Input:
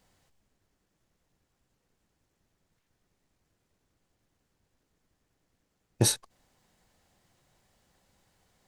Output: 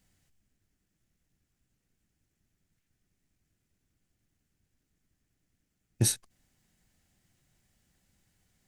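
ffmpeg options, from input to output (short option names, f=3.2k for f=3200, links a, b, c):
-af "equalizer=f=500:t=o:w=1:g=-9,equalizer=f=1k:t=o:w=1:g=-11,equalizer=f=4k:t=o:w=1:g=-5"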